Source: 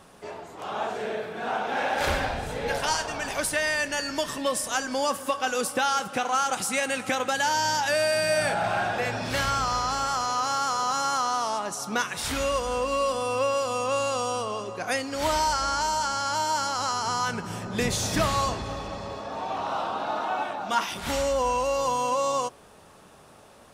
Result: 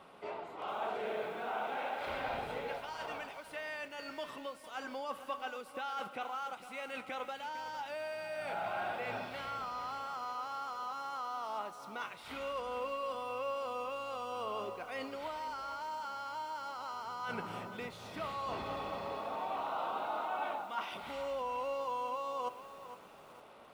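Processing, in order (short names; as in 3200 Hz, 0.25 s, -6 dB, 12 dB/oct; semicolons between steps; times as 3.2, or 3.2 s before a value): RIAA curve recording; notch 1700 Hz, Q 6.3; reverse; compressor 12:1, threshold -31 dBFS, peak gain reduction 19 dB; reverse; air absorption 490 m; lo-fi delay 0.456 s, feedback 35%, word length 9-bit, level -12 dB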